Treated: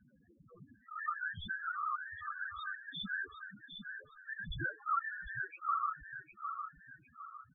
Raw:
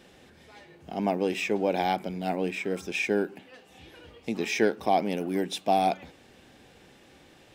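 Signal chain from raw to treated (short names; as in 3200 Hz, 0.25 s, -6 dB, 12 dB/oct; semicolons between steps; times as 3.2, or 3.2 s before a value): band inversion scrambler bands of 2000 Hz; bell 1900 Hz -13.5 dB 2 oct; hard clip -29 dBFS, distortion -14 dB; whisperiser; air absorption 280 m; on a send: feedback echo 0.756 s, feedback 37%, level -7 dB; on the sum: loudest bins only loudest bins 4; gain +6 dB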